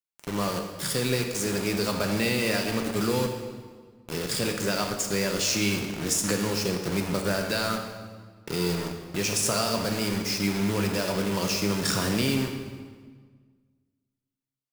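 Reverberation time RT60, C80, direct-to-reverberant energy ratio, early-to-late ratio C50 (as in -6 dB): 1.6 s, 7.0 dB, 3.0 dB, 5.5 dB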